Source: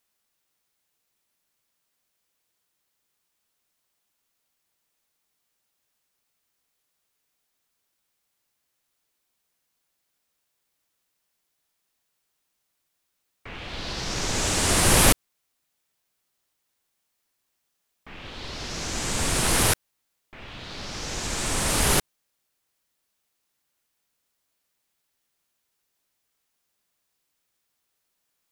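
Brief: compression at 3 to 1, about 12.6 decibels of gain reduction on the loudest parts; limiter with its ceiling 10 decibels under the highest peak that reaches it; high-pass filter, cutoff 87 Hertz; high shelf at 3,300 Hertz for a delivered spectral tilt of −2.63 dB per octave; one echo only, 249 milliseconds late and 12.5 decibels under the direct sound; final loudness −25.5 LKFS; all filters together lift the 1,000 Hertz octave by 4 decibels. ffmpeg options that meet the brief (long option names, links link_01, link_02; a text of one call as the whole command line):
ffmpeg -i in.wav -af "highpass=87,equalizer=frequency=1000:width_type=o:gain=4.5,highshelf=frequency=3300:gain=5,acompressor=threshold=-29dB:ratio=3,alimiter=level_in=1.5dB:limit=-24dB:level=0:latency=1,volume=-1.5dB,aecho=1:1:249:0.237,volume=9dB" out.wav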